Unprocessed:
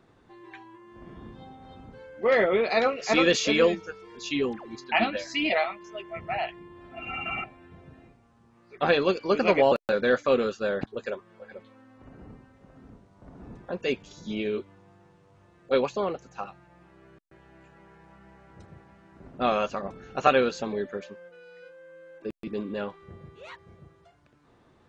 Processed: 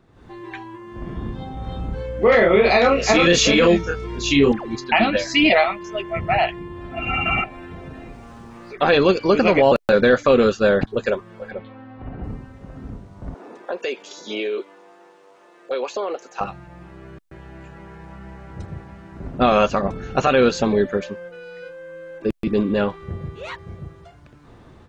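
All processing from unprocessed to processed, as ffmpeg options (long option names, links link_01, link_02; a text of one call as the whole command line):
ffmpeg -i in.wav -filter_complex "[0:a]asettb=1/sr,asplit=3[link_01][link_02][link_03];[link_01]atrim=end=1.544[link_04];[link_02]atrim=start=1.54:end=4.52,asetpts=PTS-STARTPTS,afade=type=in:duration=0.004:curve=qsin,afade=type=out:start_time=2.976:duration=0.004:curve=qsin,asplit=2[link_05][link_06];[link_06]adelay=29,volume=-2dB[link_07];[link_05][link_07]amix=inputs=2:normalize=0,atrim=end_sample=131418,aeval=exprs='val(0)+0.00355*(sin(2*PI*60*n/s)+sin(2*PI*2*60*n/s)/2+sin(2*PI*3*60*n/s)/3+sin(2*PI*4*60*n/s)/4+sin(2*PI*5*60*n/s)/5)':channel_layout=same,equalizer=frequency=4800:width=7.1:gain=-3[link_08];[link_03]atrim=start=4.516[link_09];[link_04][link_08]acrossfade=duration=0.004:curve1=hsin:curve2=qsin[link_10];[link_10][link_09]acrossfade=duration=0.004:curve1=qsin:curve2=hsin,asettb=1/sr,asplit=3[link_11][link_12][link_13];[link_11]atrim=end=7.414[link_14];[link_12]atrim=start=7.41:end=8.93,asetpts=PTS-STARTPTS,afade=type=in:duration=0.004:curve=qsin,afade=type=out:start_time=1.516:duration=0.004:curve=qsin,equalizer=frequency=99:width_type=o:width=2:gain=-9.5,acompressor=mode=upward:threshold=-42dB:ratio=2.5:attack=3.2:release=140:knee=2.83:detection=peak[link_15];[link_13]atrim=start=8.926[link_16];[link_14][link_15]acrossfade=duration=0.004:curve1=hsin:curve2=qsin[link_17];[link_17][link_16]acrossfade=duration=0.004:curve1=qsin:curve2=hsin,asettb=1/sr,asplit=3[link_18][link_19][link_20];[link_18]atrim=end=11.514[link_21];[link_19]atrim=start=11.51:end=12.24,asetpts=PTS-STARTPTS,afade=type=in:duration=0.004:curve=qsin,afade=type=out:start_time=0.726:duration=0.004:curve=qsin,lowpass=frequency=3800:width=0.5412,lowpass=frequency=3800:width=1.3066,equalizer=frequency=750:width=7.8:gain=8[link_22];[link_20]atrim=start=12.236[link_23];[link_21][link_22]acrossfade=duration=0.004:curve1=hsin:curve2=qsin[link_24];[link_24][link_23]acrossfade=duration=0.004:curve1=qsin:curve2=hsin,asettb=1/sr,asplit=3[link_25][link_26][link_27];[link_25]atrim=end=13.344[link_28];[link_26]atrim=start=13.34:end=16.41,asetpts=PTS-STARTPTS,afade=type=in:duration=0.004:curve=qsin,afade=type=out:start_time=3.066:duration=0.004:curve=qsin,highpass=frequency=360:width=0.5412,highpass=frequency=360:width=1.3066,acompressor=threshold=-33dB:ratio=6:attack=3.2:release=140:knee=1:detection=peak[link_29];[link_27]atrim=start=16.406[link_30];[link_28][link_29]acrossfade=duration=0.004:curve1=hsin:curve2=qsin[link_31];[link_31][link_30]acrossfade=duration=0.004:curve1=qsin:curve2=hsin,lowshelf=frequency=130:gain=10.5,alimiter=limit=-16.5dB:level=0:latency=1:release=83,dynaudnorm=framelen=120:gausssize=3:maxgain=11dB" out.wav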